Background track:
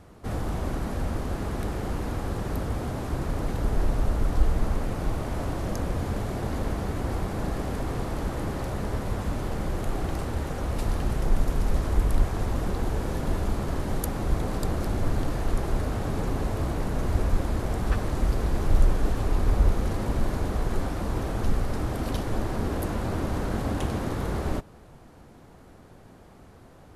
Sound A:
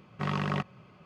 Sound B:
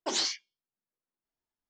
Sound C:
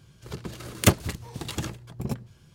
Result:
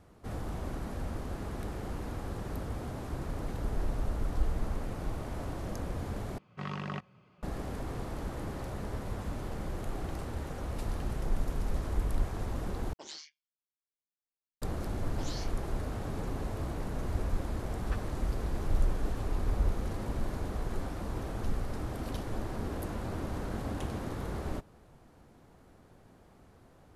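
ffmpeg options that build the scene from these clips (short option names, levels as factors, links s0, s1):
-filter_complex "[2:a]asplit=2[s0][s1];[0:a]volume=0.398[s2];[s0]tremolo=f=150:d=0.621[s3];[s1]alimiter=level_in=1.41:limit=0.0631:level=0:latency=1:release=247,volume=0.708[s4];[s2]asplit=3[s5][s6][s7];[s5]atrim=end=6.384[s8];[1:a]atrim=end=1.05,asetpts=PTS-STARTPTS,volume=0.422[s9];[s6]atrim=start=7.426:end=12.934[s10];[s3]atrim=end=1.69,asetpts=PTS-STARTPTS,volume=0.2[s11];[s7]atrim=start=14.616[s12];[s4]atrim=end=1.69,asetpts=PTS-STARTPTS,volume=0.398,afade=t=in:d=0.004:c=hsin,afade=t=out:st=1.686:d=0.004:c=hsin,adelay=15120[s13];[s8][s9]acrossfade=d=0.004:c1=hsin:c2=hsin[s14];[s14][s10]acrossfade=d=0.004:c1=hsin:c2=hsin[s15];[s15][s11]acrossfade=d=0.004:c1=hsin:c2=hsin[s16];[s16][s12]acrossfade=d=0.004:c1=hsin:c2=hsin[s17];[s17][s13]amix=inputs=2:normalize=0"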